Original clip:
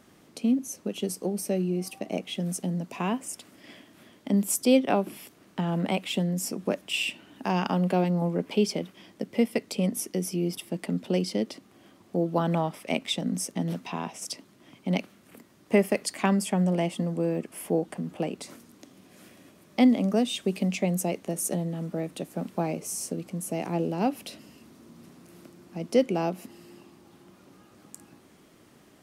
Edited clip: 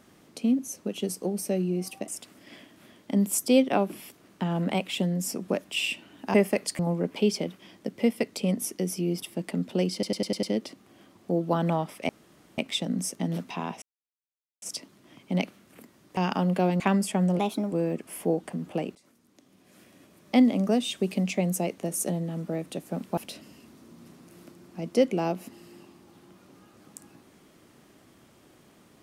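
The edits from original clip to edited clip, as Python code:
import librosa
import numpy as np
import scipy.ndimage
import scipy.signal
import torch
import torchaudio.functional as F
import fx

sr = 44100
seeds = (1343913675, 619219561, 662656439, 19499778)

y = fx.edit(x, sr, fx.cut(start_s=2.08, length_s=1.17),
    fx.swap(start_s=7.51, length_s=0.63, other_s=15.73, other_length_s=0.45),
    fx.stutter(start_s=11.28, slice_s=0.1, count=6),
    fx.insert_room_tone(at_s=12.94, length_s=0.49),
    fx.insert_silence(at_s=14.18, length_s=0.8),
    fx.speed_span(start_s=16.77, length_s=0.4, speed=1.2),
    fx.fade_in_from(start_s=18.4, length_s=1.39, floor_db=-22.0),
    fx.cut(start_s=22.62, length_s=1.53), tone=tone)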